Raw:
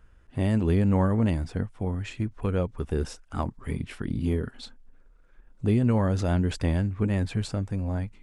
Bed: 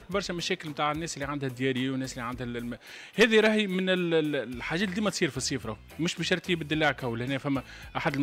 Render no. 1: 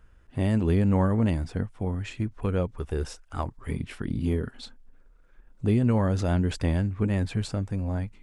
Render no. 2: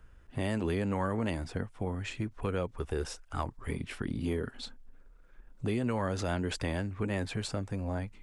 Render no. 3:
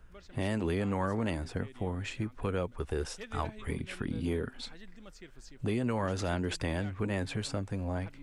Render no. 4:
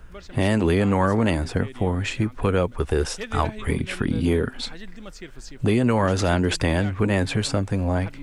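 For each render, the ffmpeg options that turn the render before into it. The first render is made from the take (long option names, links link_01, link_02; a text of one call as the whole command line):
ffmpeg -i in.wav -filter_complex "[0:a]asettb=1/sr,asplit=3[link_01][link_02][link_03];[link_01]atrim=end=2.794[link_04];[link_02]atrim=start=2.79:end=3.69,asetpts=PTS-STARTPTS,afade=type=in:duration=0.004:curve=qsin,afade=type=out:start_time=0.896:duration=0.004:curve=qsin,equalizer=frequency=210:width=1.5:gain=-8[link_05];[link_03]atrim=start=3.686[link_06];[link_04][link_05]acrossfade=duration=0.004:curve1=hsin:curve2=qsin[link_07];[link_07][link_06]acrossfade=duration=0.004:curve1=qsin:curve2=hsin" out.wav
ffmpeg -i in.wav -filter_complex "[0:a]acrossover=split=310|980[link_01][link_02][link_03];[link_01]acompressor=threshold=-34dB:ratio=6[link_04];[link_02]alimiter=level_in=3.5dB:limit=-24dB:level=0:latency=1,volume=-3.5dB[link_05];[link_04][link_05][link_03]amix=inputs=3:normalize=0" out.wav
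ffmpeg -i in.wav -i bed.wav -filter_complex "[1:a]volume=-24.5dB[link_01];[0:a][link_01]amix=inputs=2:normalize=0" out.wav
ffmpeg -i in.wav -af "volume=11.5dB" out.wav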